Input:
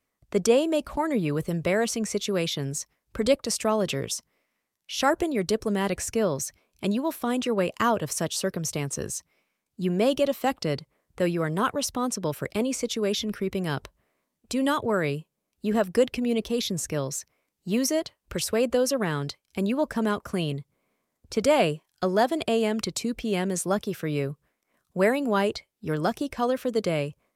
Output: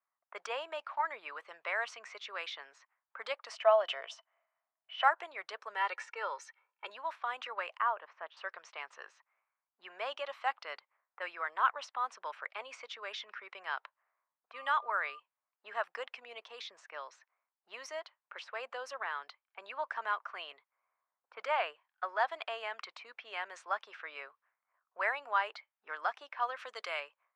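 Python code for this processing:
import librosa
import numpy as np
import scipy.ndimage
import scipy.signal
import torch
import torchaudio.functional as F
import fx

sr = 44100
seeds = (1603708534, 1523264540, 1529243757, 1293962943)

y = fx.small_body(x, sr, hz=(660.0, 3000.0), ring_ms=40, db=16, at=(3.53, 5.08))
y = fx.comb(y, sr, ms=2.2, depth=0.78, at=(5.75, 6.9))
y = fx.spacing_loss(y, sr, db_at_10k=36, at=(7.77, 8.37))
y = fx.dmg_tone(y, sr, hz=1200.0, level_db=-46.0, at=(14.53, 15.18), fade=0.02)
y = fx.peak_eq(y, sr, hz=1900.0, db=-3.0, octaves=2.2, at=(15.93, 19.62))
y = fx.high_shelf(y, sr, hz=5200.0, db=-8.5, at=(21.34, 22.2))
y = fx.high_shelf(y, sr, hz=3500.0, db=12.0, at=(26.58, 26.99), fade=0.02)
y = scipy.signal.sosfilt(scipy.signal.butter(2, 1900.0, 'lowpass', fs=sr, output='sos'), y)
y = fx.env_lowpass(y, sr, base_hz=1200.0, full_db=-22.0)
y = scipy.signal.sosfilt(scipy.signal.butter(4, 930.0, 'highpass', fs=sr, output='sos'), y)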